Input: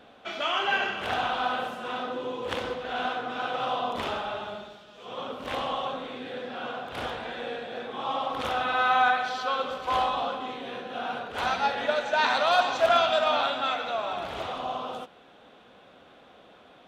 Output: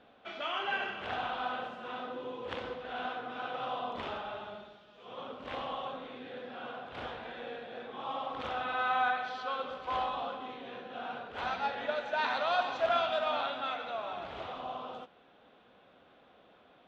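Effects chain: LPF 4000 Hz 12 dB/oct; gain -7.5 dB

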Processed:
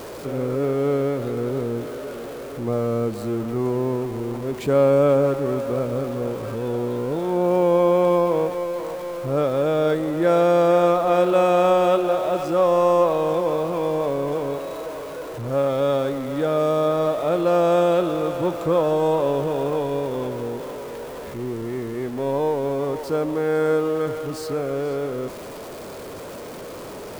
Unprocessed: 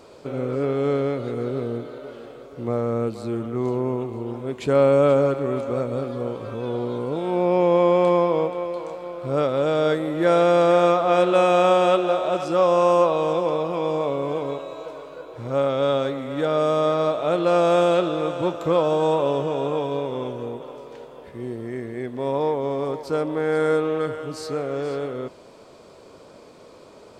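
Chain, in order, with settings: zero-crossing step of -30.5 dBFS; bell 3900 Hz -5 dB 2.8 oct

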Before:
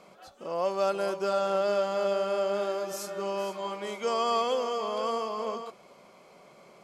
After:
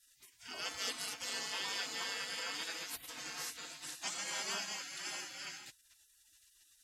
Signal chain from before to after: notch comb 340 Hz; spectral gate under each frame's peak -30 dB weak; gain +9.5 dB

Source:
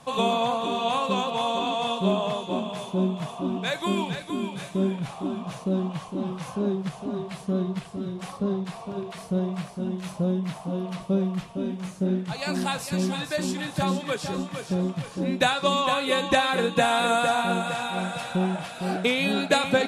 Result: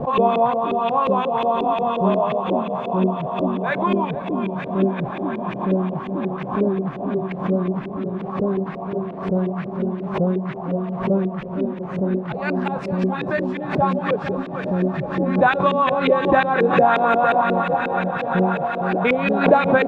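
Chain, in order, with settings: diffused feedback echo 1.481 s, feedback 47%, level -9 dB; LFO low-pass saw up 5.6 Hz 400–2400 Hz; backwards sustainer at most 93 dB/s; gain +3 dB

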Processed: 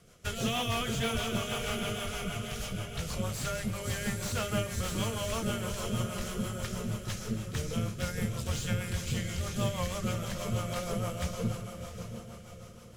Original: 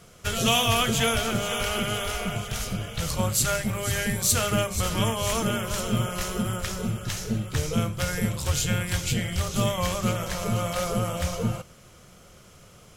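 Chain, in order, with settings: diffused feedback echo 0.68 s, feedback 43%, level -8 dB; rotary speaker horn 6.3 Hz; slew limiter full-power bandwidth 160 Hz; gain -5.5 dB

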